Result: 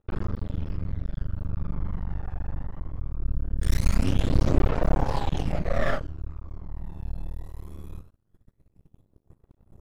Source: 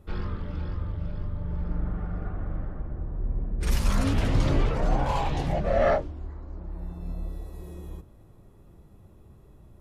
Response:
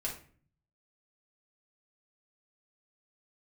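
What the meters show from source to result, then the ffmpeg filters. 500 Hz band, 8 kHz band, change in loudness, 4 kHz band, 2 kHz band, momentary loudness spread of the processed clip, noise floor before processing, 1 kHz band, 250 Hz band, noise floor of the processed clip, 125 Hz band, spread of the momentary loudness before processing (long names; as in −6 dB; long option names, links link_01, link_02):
−4.0 dB, −1.5 dB, −0.5 dB, −1.5 dB, −0.5 dB, 16 LU, −53 dBFS, −3.5 dB, +0.5 dB, −70 dBFS, +0.5 dB, 16 LU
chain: -af "aeval=exprs='max(val(0),0)':channel_layout=same,aphaser=in_gain=1:out_gain=1:delay=1.2:decay=0.48:speed=0.21:type=triangular,agate=range=-18dB:threshold=-45dB:ratio=16:detection=peak"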